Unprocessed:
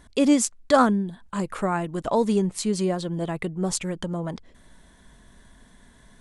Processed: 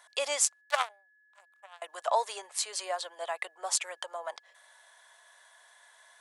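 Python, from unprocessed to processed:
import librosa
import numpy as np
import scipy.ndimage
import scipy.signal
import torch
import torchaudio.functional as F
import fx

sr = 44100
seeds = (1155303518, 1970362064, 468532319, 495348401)

y = fx.power_curve(x, sr, exponent=3.0, at=(0.61, 1.82))
y = scipy.signal.sosfilt(scipy.signal.butter(6, 630.0, 'highpass', fs=sr, output='sos'), y)
y = y + 10.0 ** (-63.0 / 20.0) * np.sin(2.0 * np.pi * 1700.0 * np.arange(len(y)) / sr)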